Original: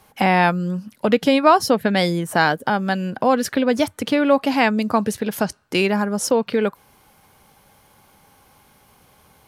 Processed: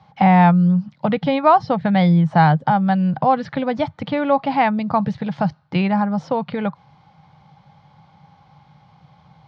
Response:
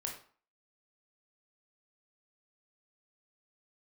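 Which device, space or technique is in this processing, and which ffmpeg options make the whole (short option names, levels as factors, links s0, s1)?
guitar cabinet: -filter_complex "[0:a]lowpass=6900,highpass=110,equalizer=f=150:t=q:w=4:g=8,equalizer=f=230:t=q:w=4:g=-8,equalizer=f=410:t=q:w=4:g=-10,equalizer=f=810:t=q:w=4:g=7,equalizer=f=1600:t=q:w=4:g=-5,equalizer=f=2700:t=q:w=4:g=-7,lowpass=f=4400:w=0.5412,lowpass=f=4400:w=1.3066,acrossover=split=3900[s0][s1];[s1]acompressor=threshold=0.002:ratio=4:attack=1:release=60[s2];[s0][s2]amix=inputs=2:normalize=0,lowshelf=f=230:t=q:w=1.5:g=7.5"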